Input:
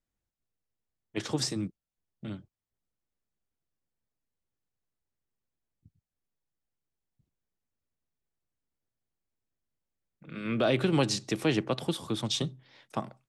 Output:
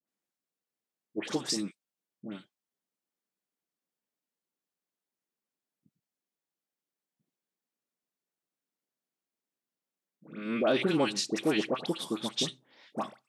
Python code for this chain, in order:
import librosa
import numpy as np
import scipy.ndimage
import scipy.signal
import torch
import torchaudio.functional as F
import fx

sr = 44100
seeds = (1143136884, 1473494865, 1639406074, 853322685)

y = scipy.signal.sosfilt(scipy.signal.butter(4, 190.0, 'highpass', fs=sr, output='sos'), x)
y = fx.dispersion(y, sr, late='highs', ms=79.0, hz=1200.0)